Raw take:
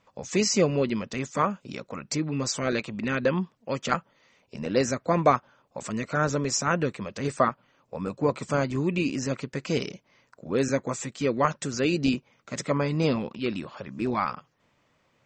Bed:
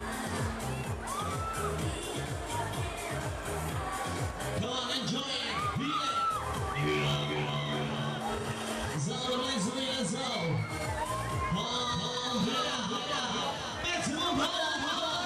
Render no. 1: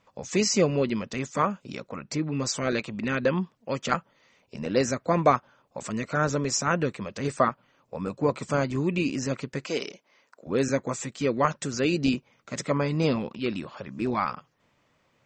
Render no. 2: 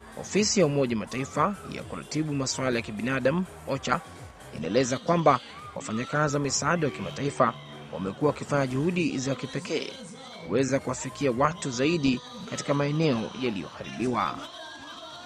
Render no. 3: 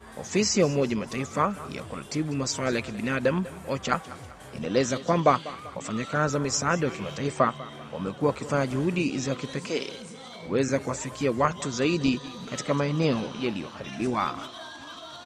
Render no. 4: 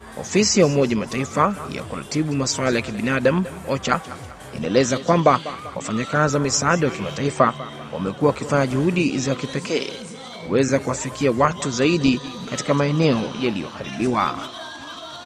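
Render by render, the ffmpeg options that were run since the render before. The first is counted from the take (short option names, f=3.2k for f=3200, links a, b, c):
-filter_complex "[0:a]asettb=1/sr,asplit=3[a][b][c];[a]atrim=end=1.884[d];[b]atrim=start=1.88:end=2.35,asetpts=PTS-STARTPTS,afade=t=in:d=0.004:c=qsin,afade=t=out:st=0.466:d=0.004:c=qsin,highshelf=f=5.2k:g=-9.5[e];[c]atrim=start=2.346[f];[d][e]acrossfade=d=0.004:c1=hsin:c2=qsin[g];[g][f]acrossfade=d=0.004:c1=qsin:c2=hsin,asettb=1/sr,asplit=3[h][i][j];[h]atrim=end=9.654[k];[i]atrim=start=9.65:end=10.47,asetpts=PTS-STARTPTS,afade=t=in:d=0.004:c=qsin,afade=t=out:st=0.816:d=0.004:c=qsin,highpass=340[l];[j]atrim=start=10.466[m];[k][l]acrossfade=d=0.004:c1=hsin:c2=qsin[n];[n][m]acrossfade=d=0.004:c1=qsin:c2=hsin"
-filter_complex "[1:a]volume=-10dB[a];[0:a][a]amix=inputs=2:normalize=0"
-af "aecho=1:1:195|390|585|780:0.126|0.0567|0.0255|0.0115"
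-af "volume=6.5dB,alimiter=limit=-2dB:level=0:latency=1"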